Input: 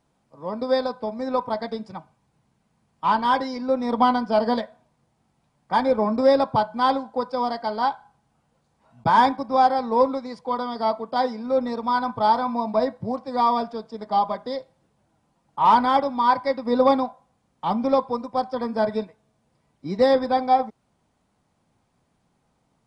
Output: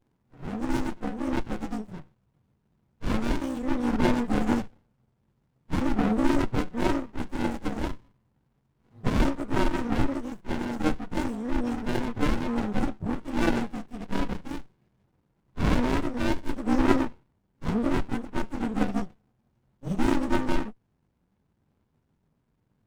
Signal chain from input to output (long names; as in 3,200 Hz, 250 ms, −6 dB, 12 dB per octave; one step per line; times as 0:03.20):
partials spread apart or drawn together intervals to 116%
gain on a spectral selection 0:13.20–0:15.04, 1,600–3,500 Hz +11 dB
windowed peak hold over 65 samples
level +3 dB